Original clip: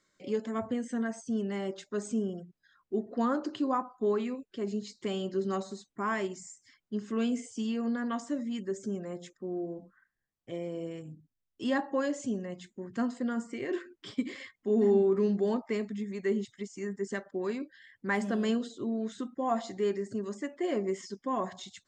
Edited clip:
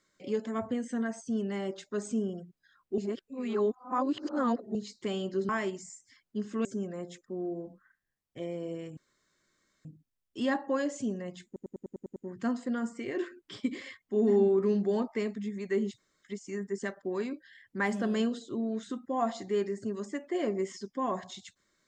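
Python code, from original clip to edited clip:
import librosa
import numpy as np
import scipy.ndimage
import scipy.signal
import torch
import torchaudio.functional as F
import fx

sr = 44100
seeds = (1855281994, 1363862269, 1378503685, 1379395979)

y = fx.edit(x, sr, fx.reverse_span(start_s=2.98, length_s=1.77),
    fx.cut(start_s=5.49, length_s=0.57),
    fx.cut(start_s=7.22, length_s=1.55),
    fx.insert_room_tone(at_s=11.09, length_s=0.88),
    fx.stutter(start_s=12.7, slice_s=0.1, count=8),
    fx.insert_room_tone(at_s=16.52, length_s=0.25), tone=tone)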